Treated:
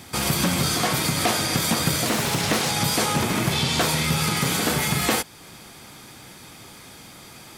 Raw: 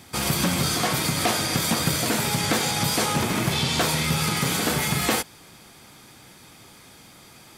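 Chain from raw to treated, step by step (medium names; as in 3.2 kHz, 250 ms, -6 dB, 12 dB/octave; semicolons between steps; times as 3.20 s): in parallel at -3 dB: compression, threshold -37 dBFS, peak gain reduction 17.5 dB; on the sum: bit crusher 12-bit; 2.07–2.70 s: loudspeaker Doppler distortion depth 0.78 ms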